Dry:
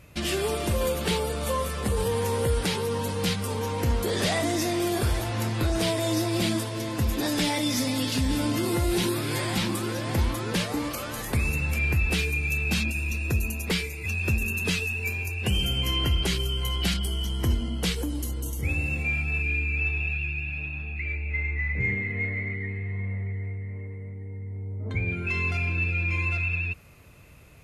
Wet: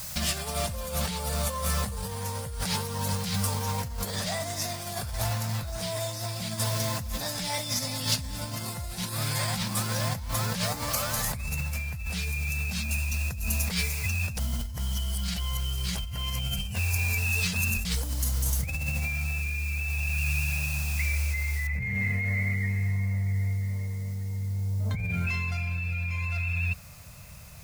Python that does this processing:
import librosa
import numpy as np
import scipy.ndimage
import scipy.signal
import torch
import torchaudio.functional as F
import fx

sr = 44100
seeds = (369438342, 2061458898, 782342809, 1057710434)

y = fx.quant_companded(x, sr, bits=6, at=(3.21, 7.73))
y = fx.noise_floor_step(y, sr, seeds[0], at_s=21.67, before_db=-45, after_db=-61, tilt_db=0.0)
y = fx.edit(y, sr, fx.reverse_span(start_s=14.37, length_s=3.48), tone=tone)
y = fx.high_shelf(y, sr, hz=2800.0, db=-8.5)
y = fx.over_compress(y, sr, threshold_db=-31.0, ratio=-1.0)
y = fx.curve_eq(y, sr, hz=(190.0, 340.0, 610.0, 3000.0, 5000.0), db=(0, -20, -1, 0, 10))
y = F.gain(torch.from_numpy(y), 2.0).numpy()